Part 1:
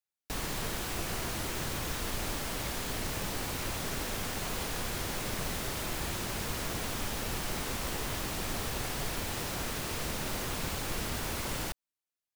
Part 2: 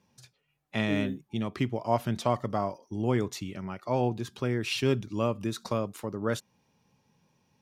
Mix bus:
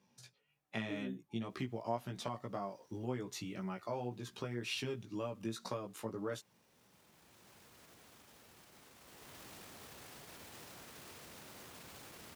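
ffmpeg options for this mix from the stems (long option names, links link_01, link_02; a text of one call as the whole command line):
ffmpeg -i stem1.wav -i stem2.wav -filter_complex "[0:a]alimiter=level_in=8.5dB:limit=-24dB:level=0:latency=1:release=13,volume=-8.5dB,adelay=1200,volume=-11dB,afade=type=in:start_time=8.97:duration=0.43:silence=0.421697[link_01];[1:a]acompressor=threshold=-33dB:ratio=5,flanger=delay=15.5:depth=2.2:speed=1.9,volume=0dB,asplit=2[link_02][link_03];[link_03]apad=whole_len=597835[link_04];[link_01][link_04]sidechaincompress=threshold=-50dB:ratio=8:attack=21:release=1220[link_05];[link_05][link_02]amix=inputs=2:normalize=0,highpass=63,lowshelf=frequency=90:gain=-9" out.wav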